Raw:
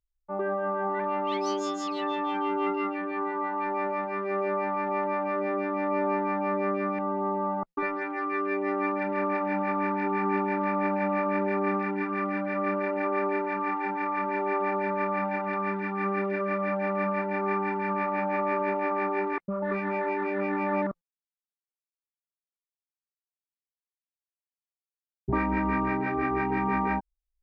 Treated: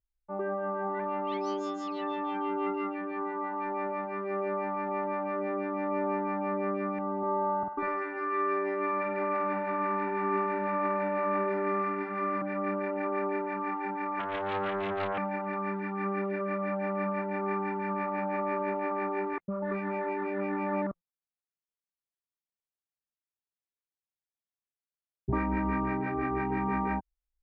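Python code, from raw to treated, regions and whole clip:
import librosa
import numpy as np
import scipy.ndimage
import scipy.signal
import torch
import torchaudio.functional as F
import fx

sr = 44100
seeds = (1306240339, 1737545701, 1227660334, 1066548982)

y = fx.chain(x, sr, fx.doubler(ms=49.0, db=-4),
    fx.echo_banded(ms=100, feedback_pct=62, hz=1600.0, wet_db=-7), at=(7.18, 12.42))
y = fx.chain(y, sr, fx.high_shelf(hz=5300.0, db=10.0),
    fx.hum_notches(base_hz=50, count=10),
    fx.doppler_dist(depth_ms=0.5), at=(14.19, 15.18))
y = fx.lowpass(y, sr, hz=2500.0, slope=6)
y = fx.peak_eq(y, sr, hz=89.0, db=4.5, octaves=1.7)
y = y * librosa.db_to_amplitude(-3.5)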